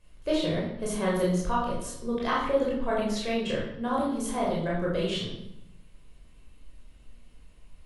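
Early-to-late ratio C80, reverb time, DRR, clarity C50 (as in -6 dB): 6.0 dB, 0.75 s, -5.5 dB, 2.5 dB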